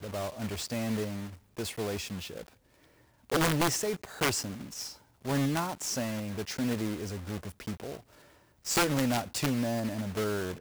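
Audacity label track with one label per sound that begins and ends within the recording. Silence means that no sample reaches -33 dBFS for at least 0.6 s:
3.300000	7.950000	sound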